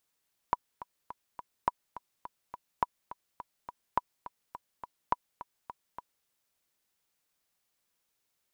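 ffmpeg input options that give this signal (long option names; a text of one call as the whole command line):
ffmpeg -f lavfi -i "aevalsrc='pow(10,(-12-15.5*gte(mod(t,4*60/209),60/209))/20)*sin(2*PI*978*mod(t,60/209))*exp(-6.91*mod(t,60/209)/0.03)':duration=5.74:sample_rate=44100" out.wav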